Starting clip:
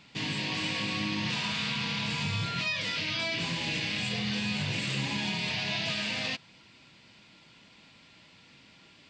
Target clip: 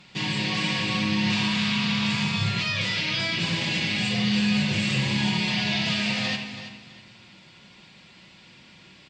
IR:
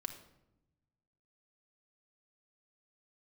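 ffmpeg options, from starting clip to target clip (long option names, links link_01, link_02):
-filter_complex "[0:a]aecho=1:1:328|656|984:0.251|0.0628|0.0157[link_01];[1:a]atrim=start_sample=2205,asetrate=32634,aresample=44100[link_02];[link_01][link_02]afir=irnorm=-1:irlink=0,volume=5dB"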